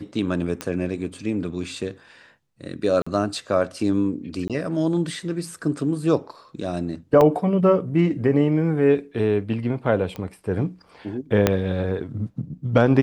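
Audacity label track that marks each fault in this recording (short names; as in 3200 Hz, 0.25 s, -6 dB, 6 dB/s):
0.610000	0.610000	pop -12 dBFS
3.020000	3.060000	gap 45 ms
4.480000	4.500000	gap 17 ms
7.210000	7.210000	gap 3 ms
10.160000	10.160000	pop -19 dBFS
11.470000	11.470000	pop -3 dBFS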